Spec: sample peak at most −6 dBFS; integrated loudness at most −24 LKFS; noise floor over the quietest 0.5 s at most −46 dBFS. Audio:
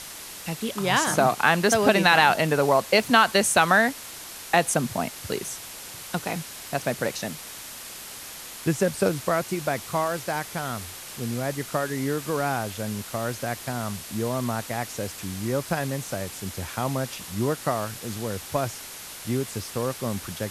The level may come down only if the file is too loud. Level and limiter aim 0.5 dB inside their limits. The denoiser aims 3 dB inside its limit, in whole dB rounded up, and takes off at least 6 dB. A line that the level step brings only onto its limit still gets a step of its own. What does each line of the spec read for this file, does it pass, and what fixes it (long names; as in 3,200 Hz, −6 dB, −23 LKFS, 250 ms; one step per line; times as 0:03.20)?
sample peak −3.5 dBFS: out of spec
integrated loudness −25.0 LKFS: in spec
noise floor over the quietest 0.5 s −40 dBFS: out of spec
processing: broadband denoise 9 dB, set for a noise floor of −40 dBFS
brickwall limiter −6.5 dBFS